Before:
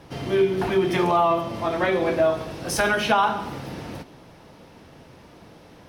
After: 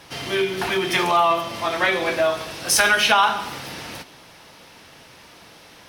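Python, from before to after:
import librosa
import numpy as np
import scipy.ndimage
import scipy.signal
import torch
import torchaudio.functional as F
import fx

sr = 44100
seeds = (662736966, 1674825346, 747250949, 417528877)

y = fx.tilt_shelf(x, sr, db=-8.5, hz=940.0)
y = y * librosa.db_to_amplitude(2.5)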